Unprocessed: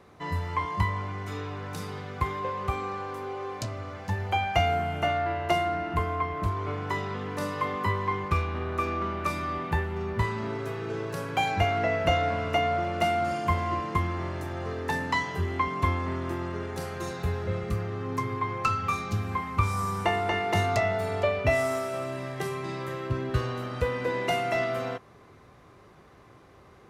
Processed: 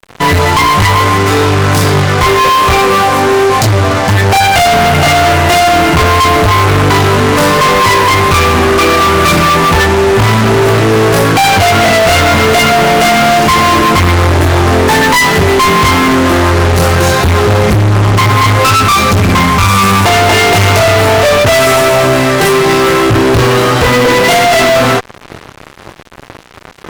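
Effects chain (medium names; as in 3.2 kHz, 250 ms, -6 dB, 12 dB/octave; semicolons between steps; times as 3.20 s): chorus voices 4, 0.2 Hz, delay 23 ms, depth 5 ms; fuzz box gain 44 dB, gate -52 dBFS; trim +7 dB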